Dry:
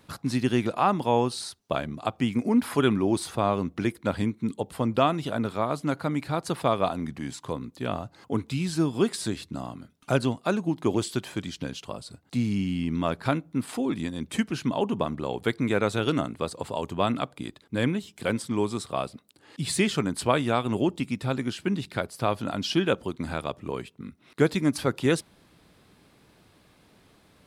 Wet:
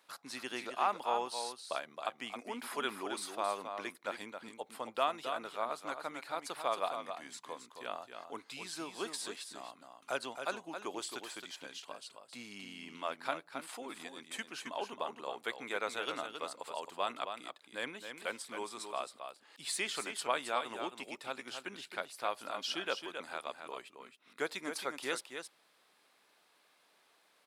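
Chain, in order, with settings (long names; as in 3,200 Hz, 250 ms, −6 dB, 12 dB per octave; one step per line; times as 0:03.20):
high-pass filter 680 Hz 12 dB per octave
single-tap delay 269 ms −7.5 dB
level −7 dB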